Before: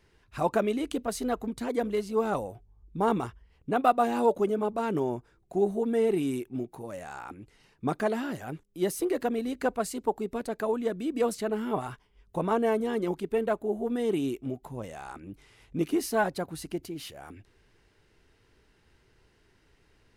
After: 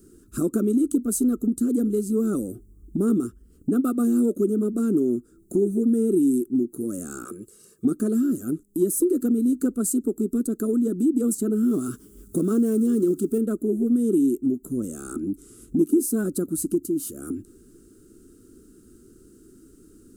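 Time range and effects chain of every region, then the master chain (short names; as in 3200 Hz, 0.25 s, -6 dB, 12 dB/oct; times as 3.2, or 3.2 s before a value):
7.25–7.85 HPF 460 Hz 6 dB/oct + comb 1.8 ms, depth 97%
11.63–13.38 G.711 law mismatch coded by mu + HPF 52 Hz + dynamic EQ 4400 Hz, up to +4 dB, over -48 dBFS, Q 0.72
whole clip: EQ curve 140 Hz 0 dB, 240 Hz +15 dB, 340 Hz +14 dB, 910 Hz -29 dB, 1300 Hz 0 dB, 2000 Hz -24 dB, 5300 Hz -3 dB, 7700 Hz +14 dB; compressor 2:1, threshold -35 dBFS; gain +7.5 dB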